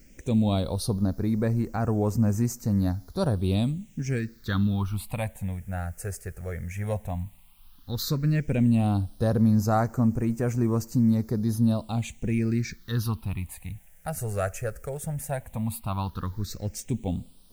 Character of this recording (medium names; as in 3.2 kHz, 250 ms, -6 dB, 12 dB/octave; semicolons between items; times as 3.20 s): a quantiser's noise floor 10-bit, dither triangular; phasing stages 6, 0.12 Hz, lowest notch 260–3600 Hz